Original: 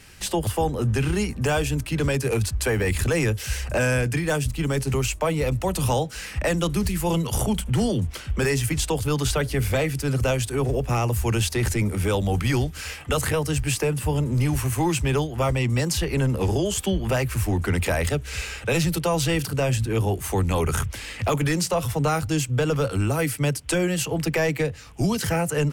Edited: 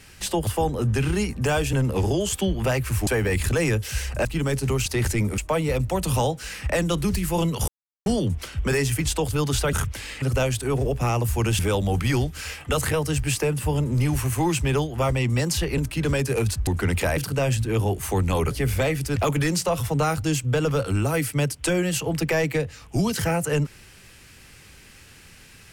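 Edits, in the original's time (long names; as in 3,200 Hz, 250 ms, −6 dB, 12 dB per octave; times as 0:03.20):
0:01.73–0:02.62: swap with 0:16.18–0:17.52
0:03.80–0:04.49: remove
0:07.40–0:07.78: silence
0:09.45–0:10.10: swap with 0:20.72–0:21.21
0:11.47–0:11.99: move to 0:05.10
0:18.02–0:19.38: remove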